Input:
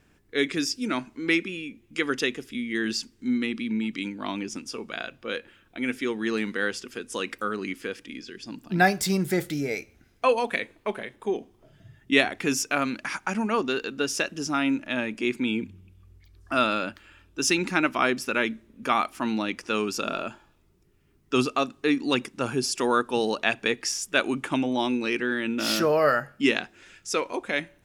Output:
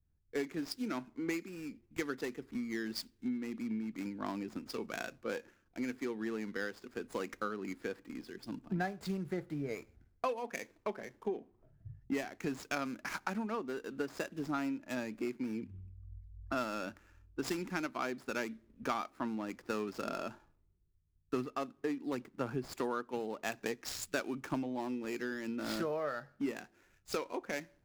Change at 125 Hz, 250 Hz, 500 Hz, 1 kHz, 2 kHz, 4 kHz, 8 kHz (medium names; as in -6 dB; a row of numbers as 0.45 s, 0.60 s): -9.5 dB, -10.5 dB, -11.5 dB, -12.5 dB, -15.0 dB, -17.0 dB, -16.0 dB